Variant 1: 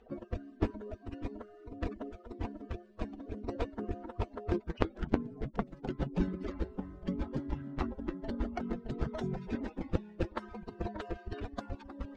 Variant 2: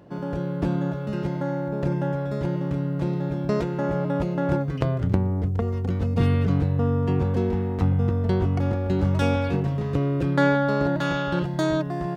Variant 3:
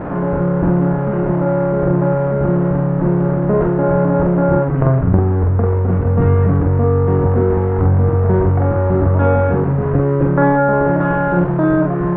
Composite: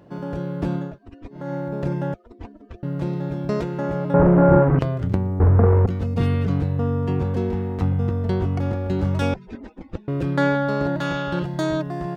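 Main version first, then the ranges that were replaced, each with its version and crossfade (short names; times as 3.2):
2
0.87–1.42 from 1, crossfade 0.24 s
2.14–2.83 from 1
4.14–4.79 from 3
5.4–5.86 from 3
9.34–10.08 from 1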